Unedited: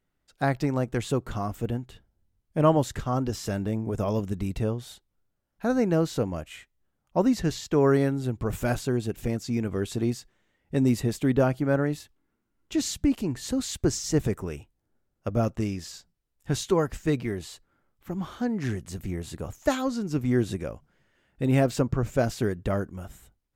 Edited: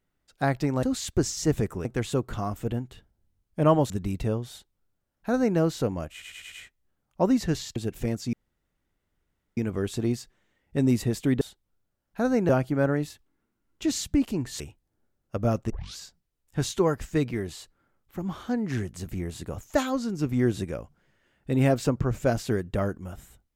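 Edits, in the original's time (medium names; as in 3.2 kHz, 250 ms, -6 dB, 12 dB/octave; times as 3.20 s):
2.88–4.26 s: delete
4.86–5.94 s: copy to 11.39 s
6.48 s: stutter 0.10 s, 5 plays
7.72–8.98 s: delete
9.55 s: insert room tone 1.24 s
13.50–14.52 s: move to 0.83 s
15.62 s: tape start 0.28 s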